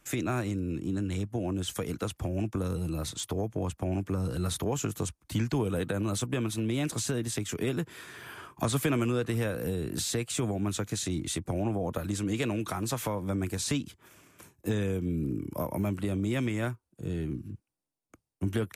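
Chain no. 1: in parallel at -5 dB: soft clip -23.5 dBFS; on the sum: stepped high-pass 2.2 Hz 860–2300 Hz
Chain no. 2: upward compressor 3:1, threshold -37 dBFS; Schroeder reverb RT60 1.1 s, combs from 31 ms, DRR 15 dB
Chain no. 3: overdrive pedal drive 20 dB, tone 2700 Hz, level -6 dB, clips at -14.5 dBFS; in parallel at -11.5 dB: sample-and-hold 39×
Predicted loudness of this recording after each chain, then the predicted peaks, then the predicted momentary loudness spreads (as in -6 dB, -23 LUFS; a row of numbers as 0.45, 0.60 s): -31.5, -32.0, -26.5 LUFS; -9.5, -15.0, -13.0 dBFS; 14, 7, 7 LU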